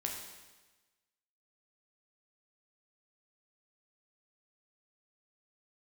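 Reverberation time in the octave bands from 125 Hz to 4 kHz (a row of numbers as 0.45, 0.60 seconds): 1.2, 1.2, 1.2, 1.2, 1.2, 1.2 seconds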